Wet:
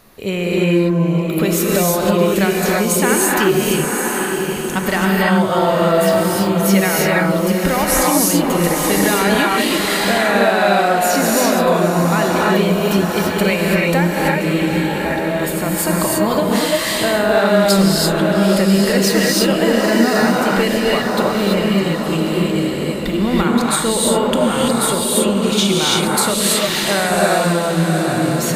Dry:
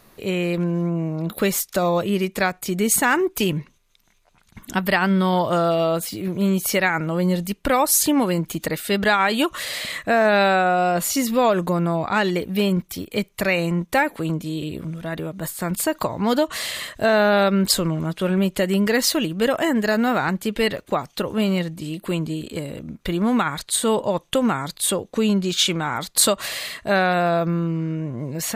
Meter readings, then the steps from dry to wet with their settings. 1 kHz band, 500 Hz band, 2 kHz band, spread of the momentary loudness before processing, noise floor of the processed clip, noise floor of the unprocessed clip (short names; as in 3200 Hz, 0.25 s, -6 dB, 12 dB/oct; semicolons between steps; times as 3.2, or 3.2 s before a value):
+5.0 dB, +6.5 dB, +5.5 dB, 10 LU, -21 dBFS, -58 dBFS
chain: diffused feedback echo 0.841 s, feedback 42%, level -8.5 dB; compressor, threshold -19 dBFS, peak gain reduction 7 dB; non-linear reverb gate 0.36 s rising, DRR -3.5 dB; gain +3.5 dB